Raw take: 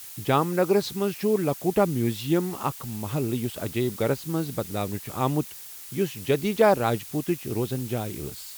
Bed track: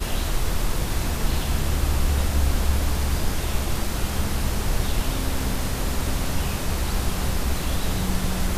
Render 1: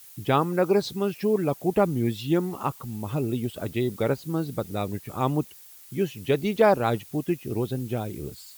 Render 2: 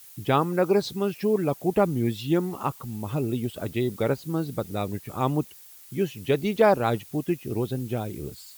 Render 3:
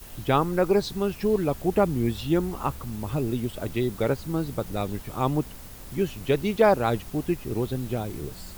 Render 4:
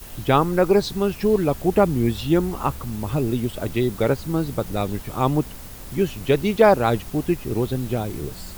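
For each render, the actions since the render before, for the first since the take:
denoiser 9 dB, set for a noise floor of -42 dBFS
nothing audible
add bed track -19 dB
gain +4.5 dB

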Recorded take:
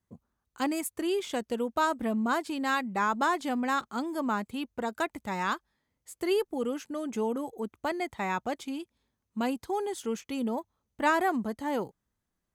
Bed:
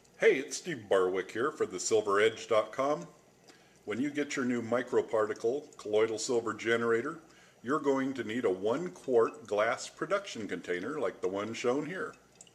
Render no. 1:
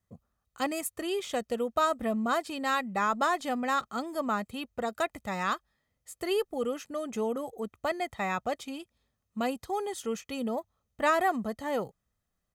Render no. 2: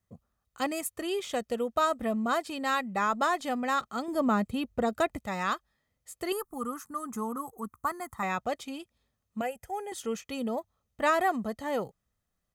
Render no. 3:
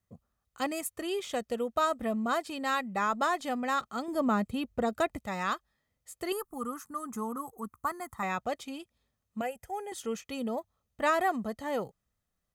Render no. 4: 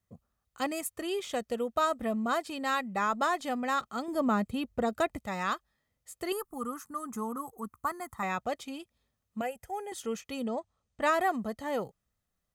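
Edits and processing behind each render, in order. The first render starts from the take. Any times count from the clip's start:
comb 1.6 ms, depth 44%
4.08–5.19 low shelf 440 Hz +10 dB; 6.32–8.23 EQ curve 250 Hz 0 dB, 610 Hz -13 dB, 1100 Hz +10 dB, 2800 Hz -17 dB, 10000 Hz +8 dB; 9.41–9.92 fixed phaser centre 1100 Hz, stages 6
gain -1.5 dB
10.42–11.01 brick-wall FIR low-pass 9400 Hz

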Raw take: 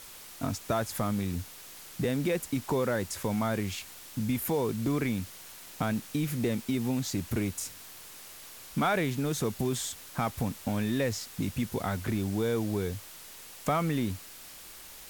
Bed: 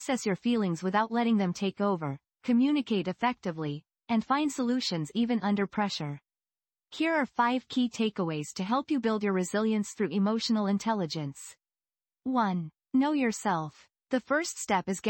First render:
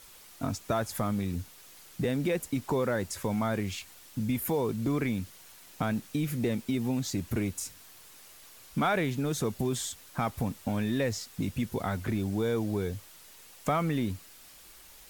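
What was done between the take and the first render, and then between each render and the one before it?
denoiser 6 dB, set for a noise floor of -48 dBFS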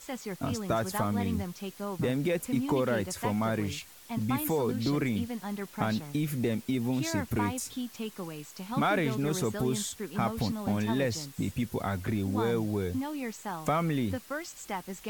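add bed -8.5 dB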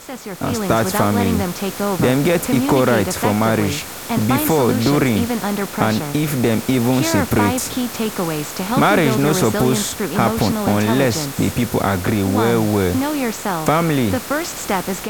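per-bin compression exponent 0.6; AGC gain up to 11 dB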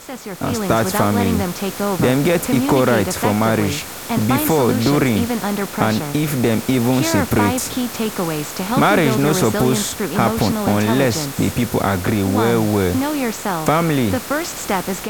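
nothing audible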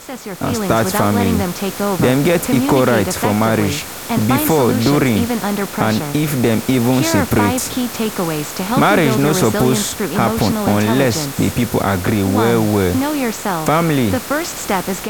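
gain +2 dB; limiter -3 dBFS, peak gain reduction 2.5 dB

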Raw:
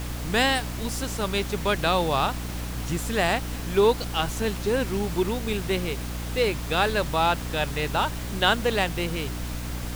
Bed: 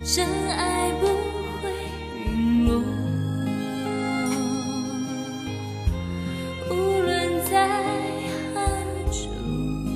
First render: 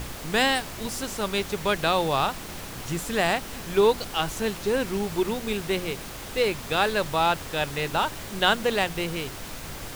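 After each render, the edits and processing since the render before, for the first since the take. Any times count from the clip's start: de-hum 60 Hz, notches 5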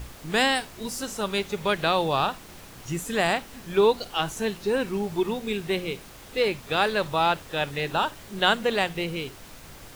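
noise print and reduce 8 dB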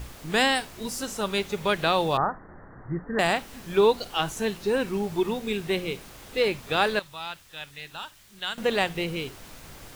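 2.17–3.19 steep low-pass 1900 Hz 96 dB/oct; 6.99–8.58 passive tone stack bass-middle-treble 5-5-5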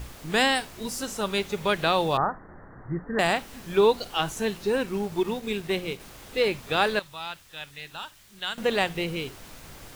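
4.72–6 G.711 law mismatch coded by A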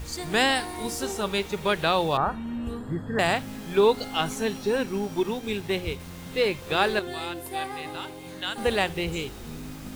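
add bed -12.5 dB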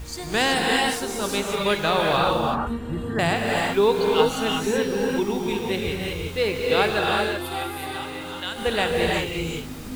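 non-linear reverb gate 0.4 s rising, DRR -1.5 dB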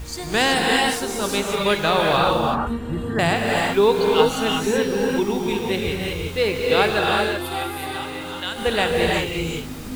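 gain +2.5 dB

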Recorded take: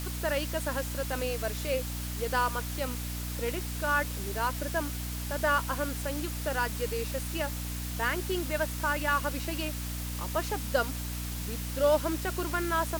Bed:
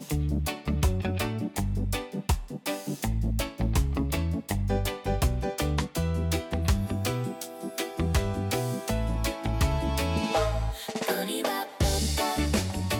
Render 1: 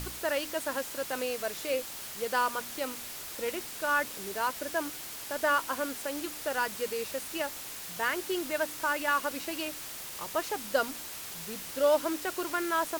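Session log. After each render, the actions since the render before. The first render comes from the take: de-hum 60 Hz, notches 5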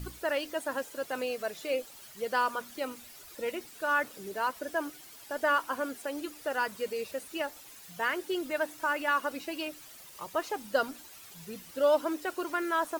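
denoiser 12 dB, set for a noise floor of -42 dBFS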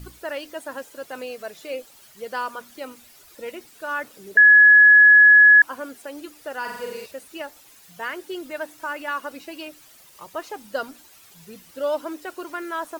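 4.37–5.62 bleep 1690 Hz -7.5 dBFS; 6.6–7.06 flutter echo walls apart 7.7 m, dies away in 0.91 s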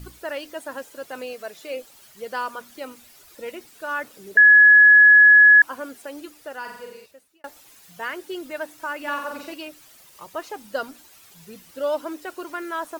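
1.33–1.77 HPF 180 Hz 6 dB/oct; 6.13–7.44 fade out linear; 8.98–9.54 flutter echo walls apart 7.7 m, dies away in 0.59 s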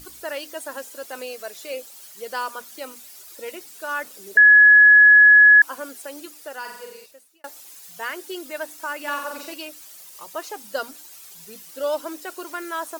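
tone controls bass -7 dB, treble +8 dB; notches 60/120/180/240 Hz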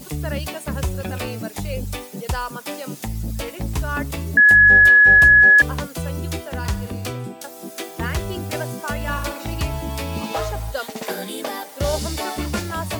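add bed +0.5 dB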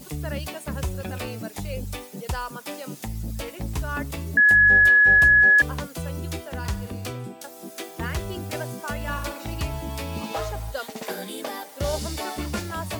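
gain -4.5 dB

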